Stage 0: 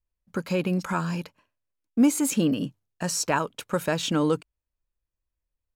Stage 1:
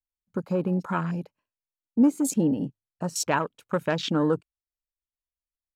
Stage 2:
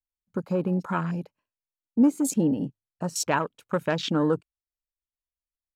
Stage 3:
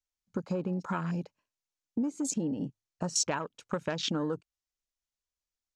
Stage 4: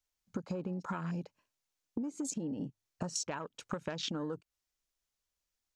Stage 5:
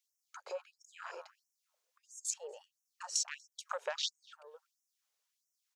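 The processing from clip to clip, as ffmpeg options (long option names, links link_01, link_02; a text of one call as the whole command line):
ffmpeg -i in.wav -af "afwtdn=0.0224" out.wav
ffmpeg -i in.wav -af anull out.wav
ffmpeg -i in.wav -af "acompressor=threshold=-29dB:ratio=6,lowpass=frequency=6500:width_type=q:width=2.1" out.wav
ffmpeg -i in.wav -af "acompressor=threshold=-40dB:ratio=5,volume=4.5dB" out.wav
ffmpeg -i in.wav -filter_complex "[0:a]asplit=2[link_01][link_02];[link_02]adelay=241,lowpass=frequency=970:poles=1,volume=-14dB,asplit=2[link_03][link_04];[link_04]adelay=241,lowpass=frequency=970:poles=1,volume=0.25,asplit=2[link_05][link_06];[link_06]adelay=241,lowpass=frequency=970:poles=1,volume=0.25[link_07];[link_01][link_03][link_05][link_07]amix=inputs=4:normalize=0,afftfilt=real='re*gte(b*sr/1024,370*pow(5400/370,0.5+0.5*sin(2*PI*1.5*pts/sr)))':imag='im*gte(b*sr/1024,370*pow(5400/370,0.5+0.5*sin(2*PI*1.5*pts/sr)))':win_size=1024:overlap=0.75,volume=3.5dB" out.wav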